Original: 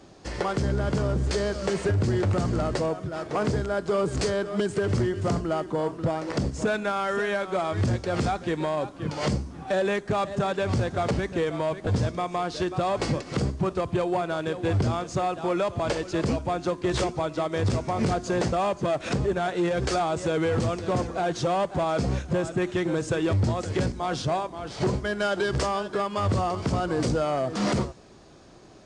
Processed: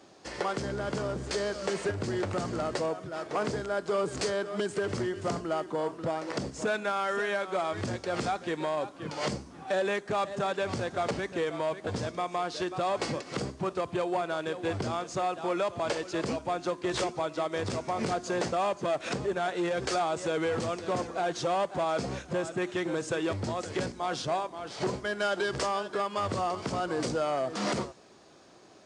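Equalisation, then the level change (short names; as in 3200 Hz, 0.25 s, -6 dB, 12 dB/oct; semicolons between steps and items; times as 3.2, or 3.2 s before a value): HPF 360 Hz 6 dB/oct; -2.0 dB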